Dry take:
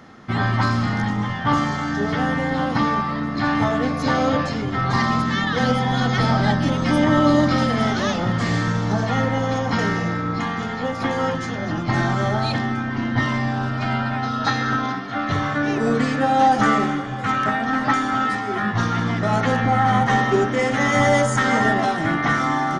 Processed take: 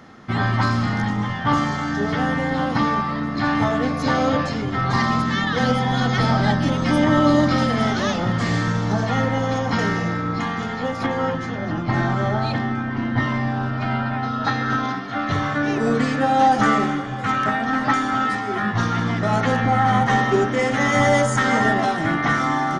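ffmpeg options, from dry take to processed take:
-filter_complex "[0:a]asettb=1/sr,asplit=3[a][b][c];[a]atrim=end=11.064[d];[b]atrim=start=11.06:end=14.7,asetpts=PTS-STARTPTS,afade=t=in:d=0.004:c=qsin,afade=t=out:st=3.636:d=0.004:c=qsin,lowpass=f=2.8k:p=1[e];[c]atrim=start=14.696[f];[d][e]acrossfade=d=0.004:c1=hsin:c2=qsin[g];[g][f]acrossfade=d=0.004:c1=qsin:c2=hsin"

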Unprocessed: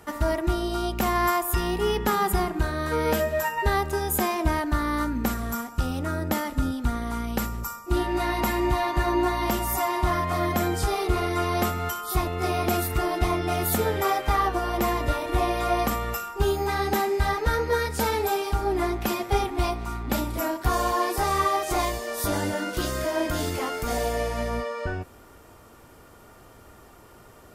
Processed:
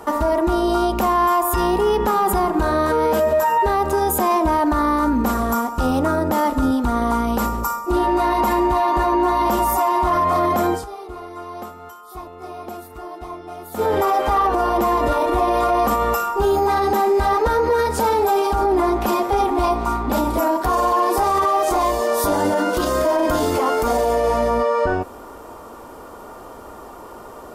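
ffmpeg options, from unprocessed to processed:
-filter_complex "[0:a]asplit=3[a][b][c];[a]atrim=end=10.85,asetpts=PTS-STARTPTS,afade=t=out:st=10.63:d=0.22:silence=0.0891251[d];[b]atrim=start=10.85:end=13.74,asetpts=PTS-STARTPTS,volume=-21dB[e];[c]atrim=start=13.74,asetpts=PTS-STARTPTS,afade=t=in:d=0.22:silence=0.0891251[f];[d][e][f]concat=n=3:v=0:a=1,equalizer=f=125:t=o:w=1:g=-7,equalizer=f=250:t=o:w=1:g=5,equalizer=f=500:t=o:w=1:g=6,equalizer=f=1k:t=o:w=1:g=10,equalizer=f=2k:t=o:w=1:g=-4,acontrast=28,alimiter=limit=-12.5dB:level=0:latency=1:release=39,volume=1.5dB"

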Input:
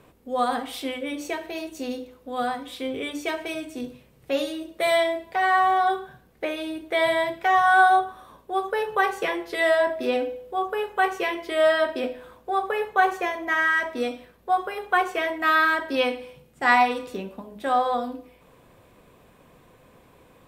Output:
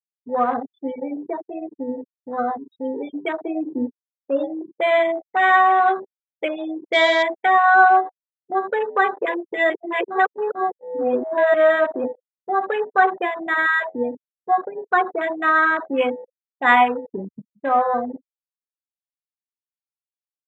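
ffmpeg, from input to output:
-filter_complex "[0:a]asplit=3[a][b][c];[a]afade=t=out:st=3.43:d=0.02[d];[b]equalizer=f=280:w=1.3:g=6.5,afade=t=in:st=3.43:d=0.02,afade=t=out:st=3.87:d=0.02[e];[c]afade=t=in:st=3.87:d=0.02[f];[d][e][f]amix=inputs=3:normalize=0,asettb=1/sr,asplit=3[g][h][i];[g]atrim=end=5.304[j];[h]atrim=start=5.3:end=7.46,asetpts=PTS-STARTPTS,afade=t=in:d=0.004:c=qsin,afade=t=out:st=2.156:d=0.004:c=qsin,highshelf=f=2.6k:g=10[k];[i]atrim=start=7.456[l];[j][k]acrossfade=d=0.004:c1=hsin:c2=qsin[m];[m][l]acrossfade=d=0.004:c1=qsin:c2=hsin,asettb=1/sr,asplit=3[n][o][p];[n]atrim=end=13.464[q];[o]atrim=start=13.46:end=16.64,asetpts=PTS-STARTPTS,afade=t=in:d=0.004:c=qsin,afade=t=out:st=3.176:d=0.004:c=qsin,lowpass=f=3k:p=1[r];[p]atrim=start=16.636[s];[q][r]acrossfade=d=0.004:c1=hsin:c2=qsin[t];[t][s]acrossfade=d=0.004:c1=qsin:c2=hsin,asplit=3[u][v][w];[u]atrim=end=9.702[x];[v]atrim=start=9.698:end=11.542,asetpts=PTS-STARTPTS,areverse[y];[w]atrim=start=11.538[z];[x][y]acrossfade=d=0.004:c1=hsin:c2=hsin[aa];[aa][z]acrossfade=d=0.004:c1=hsin:c2=hsin,afftfilt=real='re*gte(hypot(re,im),0.0891)':imag='im*gte(hypot(re,im),0.0891)':win_size=1024:overlap=0.75,afwtdn=0.0282,volume=4dB"

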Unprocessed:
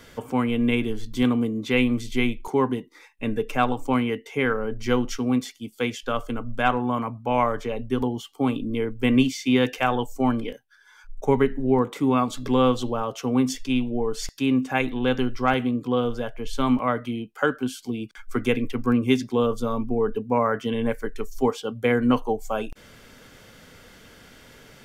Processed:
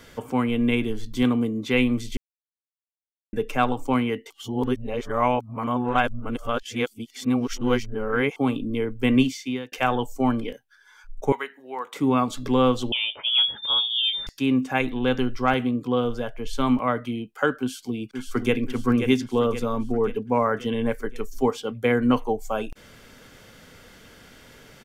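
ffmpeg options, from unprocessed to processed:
-filter_complex "[0:a]asettb=1/sr,asplit=3[a][b][c];[a]atrim=end=11.324[d];[b]atrim=start=11.32:end=11.94,asetpts=PTS-STARTPTS,afade=t=in:d=0.004:c=qsin,afade=t=out:st=0.616:d=0.004:c=qsin,highpass=1k[e];[c]atrim=start=11.936[f];[d][e]acrossfade=d=0.004:c1=hsin:c2=qsin[g];[g][f]acrossfade=d=0.004:c1=qsin:c2=hsin,asettb=1/sr,asplit=3[h][i][j];[h]atrim=end=12.924[k];[i]atrim=start=12.92:end=14.27,asetpts=PTS-STARTPTS,afade=t=in:d=0.004:c=qsin,afade=t=out:st=1.346:d=0.004:c=qsin,lowpass=f=3.1k:t=q:w=0.5098,lowpass=f=3.1k:t=q:w=0.6013,lowpass=f=3.1k:t=q:w=0.9,lowpass=f=3.1k:t=q:w=2.563,afreqshift=-3600[l];[j]atrim=start=14.266[m];[k][l]acrossfade=d=0.004:c1=hsin:c2=qsin[n];[n][m]acrossfade=d=0.004:c1=qsin:c2=hsin,asplit=2[o][p];[p]afade=t=in:st=17.6:d=0.01,afade=t=out:st=18.6:d=0.01,aecho=0:1:530|1060|1590|2120|2650|3180|3710:0.473151|0.260233|0.143128|0.0787205|0.0432963|0.023813|0.0130971[q];[o][q]amix=inputs=2:normalize=0,asplit=6[r][s][t][u][v][w];[r]atrim=end=2.17,asetpts=PTS-STARTPTS,afade=t=out:st=2.166:d=0.004:c=hsin[x];[s]atrim=start=2.17:end=3.33,asetpts=PTS-STARTPTS,volume=0[y];[t]atrim=start=3.33:end=4.302,asetpts=PTS-STARTPTS,afade=t=in:d=0.004:c=hsin[z];[u]atrim=start=4.298:end=8.362,asetpts=PTS-STARTPTS,areverse[aa];[v]atrim=start=8.358:end=9.72,asetpts=PTS-STARTPTS,afade=t=out:st=0.862:d=0.5[ab];[w]atrim=start=9.72,asetpts=PTS-STARTPTS,afade=t=in:d=0.004:c=hsin[ac];[x][y][z]concat=n=3:v=0:a=1[ad];[ad][aa]acrossfade=d=0.004:c1=hsin:c2=hsin[ae];[ab][ac]concat=n=2:v=0:a=1[af];[ae][af]acrossfade=d=0.004:c1=hsin:c2=hsin"

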